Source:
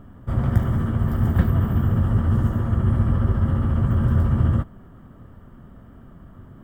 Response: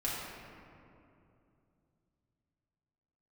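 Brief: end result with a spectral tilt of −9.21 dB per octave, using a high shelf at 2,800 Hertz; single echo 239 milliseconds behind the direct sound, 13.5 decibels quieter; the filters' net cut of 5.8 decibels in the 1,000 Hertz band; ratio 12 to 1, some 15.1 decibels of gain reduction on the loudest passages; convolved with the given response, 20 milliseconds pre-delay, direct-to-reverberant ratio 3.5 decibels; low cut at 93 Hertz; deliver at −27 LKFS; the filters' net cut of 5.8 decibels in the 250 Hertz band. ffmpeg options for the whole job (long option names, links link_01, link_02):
-filter_complex "[0:a]highpass=93,equalizer=frequency=250:width_type=o:gain=-7.5,equalizer=frequency=1000:width_type=o:gain=-6.5,highshelf=frequency=2800:gain=-5,acompressor=threshold=-33dB:ratio=12,aecho=1:1:239:0.211,asplit=2[link_01][link_02];[1:a]atrim=start_sample=2205,adelay=20[link_03];[link_02][link_03]afir=irnorm=-1:irlink=0,volume=-9dB[link_04];[link_01][link_04]amix=inputs=2:normalize=0,volume=9.5dB"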